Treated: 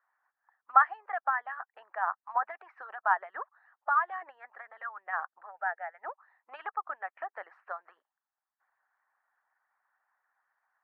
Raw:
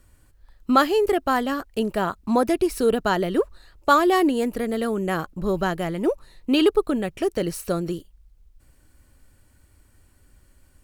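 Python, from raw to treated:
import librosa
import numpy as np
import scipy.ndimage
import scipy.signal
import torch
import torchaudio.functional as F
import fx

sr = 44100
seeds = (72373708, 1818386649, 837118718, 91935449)

y = fx.hpss(x, sr, part='harmonic', gain_db=-16)
y = scipy.signal.sosfilt(scipy.signal.cheby1(3, 1.0, [760.0, 1800.0], 'bandpass', fs=sr, output='sos'), y)
y = fx.fixed_phaser(y, sr, hz=1100.0, stages=6, at=(5.45, 6.03), fade=0.02)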